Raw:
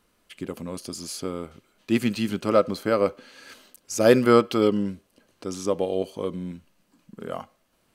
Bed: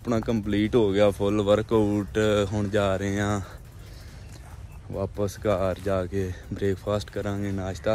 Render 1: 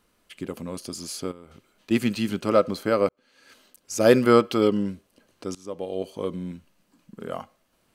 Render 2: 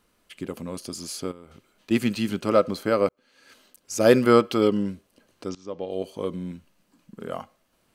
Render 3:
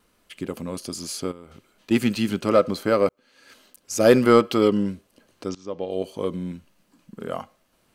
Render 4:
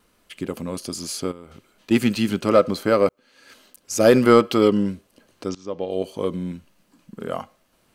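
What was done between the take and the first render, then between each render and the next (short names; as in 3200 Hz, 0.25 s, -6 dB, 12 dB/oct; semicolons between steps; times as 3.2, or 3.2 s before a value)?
1.31–1.91 compressor, threshold -41 dBFS; 3.09–4.04 fade in linear; 5.55–6.24 fade in, from -19.5 dB
5.49–5.91 LPF 5800 Hz 24 dB/oct
in parallel at -9.5 dB: hard clip -17 dBFS, distortion -8 dB; on the sum: vibrato 0.62 Hz 7.6 cents
gain +2 dB; limiter -3 dBFS, peak gain reduction 3 dB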